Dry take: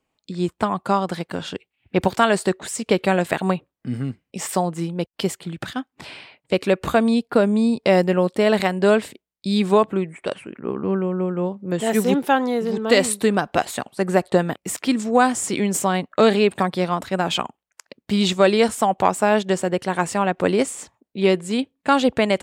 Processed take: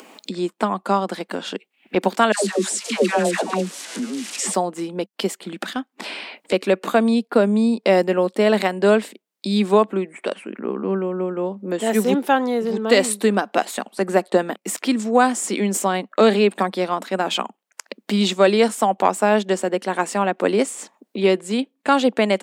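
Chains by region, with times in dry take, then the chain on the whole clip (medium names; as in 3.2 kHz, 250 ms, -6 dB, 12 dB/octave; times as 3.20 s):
2.32–4.54 s: zero-crossing glitches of -19.5 dBFS + low-pass 8.7 kHz 24 dB/octave + phase dispersion lows, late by 128 ms, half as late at 720 Hz
whole clip: elliptic high-pass 200 Hz; upward compressor, threshold -23 dBFS; trim +1 dB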